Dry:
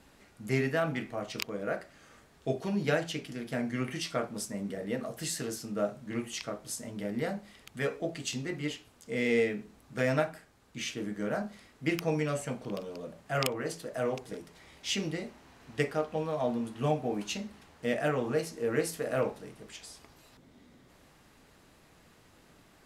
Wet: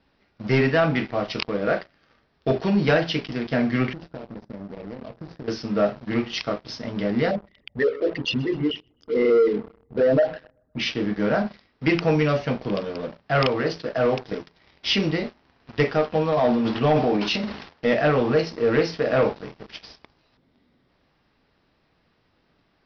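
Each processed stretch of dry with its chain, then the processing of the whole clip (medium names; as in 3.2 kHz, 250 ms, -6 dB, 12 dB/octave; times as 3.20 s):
3.93–5.48 s: median filter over 41 samples + peaking EQ 2.8 kHz -8.5 dB 0.91 oct + compression, threshold -42 dBFS
7.31–10.80 s: resonances exaggerated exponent 3 + feedback delay 128 ms, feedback 53%, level -22.5 dB
16.32–17.93 s: transient shaper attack +2 dB, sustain +10 dB + bass shelf 130 Hz -8 dB
whole clip: waveshaping leveller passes 3; steep low-pass 5.5 kHz 96 dB/octave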